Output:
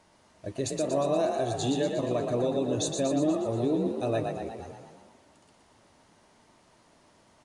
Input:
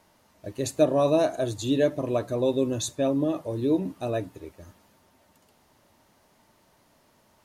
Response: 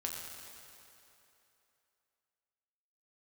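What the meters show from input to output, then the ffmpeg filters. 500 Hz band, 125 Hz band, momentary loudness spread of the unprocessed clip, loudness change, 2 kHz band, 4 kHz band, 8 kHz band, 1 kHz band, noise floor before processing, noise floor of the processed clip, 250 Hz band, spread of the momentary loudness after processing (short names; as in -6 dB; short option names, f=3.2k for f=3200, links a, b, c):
-3.0 dB, -1.5 dB, 16 LU, -3.0 dB, -2.5 dB, -0.5 dB, 0.0 dB, 0.0 dB, -63 dBFS, -62 dBFS, -2.5 dB, 12 LU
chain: -filter_complex "[0:a]aresample=22050,aresample=44100,alimiter=limit=-20dB:level=0:latency=1:release=158,asplit=2[a][b];[b]asplit=8[c][d][e][f][g][h][i][j];[c]adelay=119,afreqshift=36,volume=-5dB[k];[d]adelay=238,afreqshift=72,volume=-9.4dB[l];[e]adelay=357,afreqshift=108,volume=-13.9dB[m];[f]adelay=476,afreqshift=144,volume=-18.3dB[n];[g]adelay=595,afreqshift=180,volume=-22.7dB[o];[h]adelay=714,afreqshift=216,volume=-27.2dB[p];[i]adelay=833,afreqshift=252,volume=-31.6dB[q];[j]adelay=952,afreqshift=288,volume=-36.1dB[r];[k][l][m][n][o][p][q][r]amix=inputs=8:normalize=0[s];[a][s]amix=inputs=2:normalize=0"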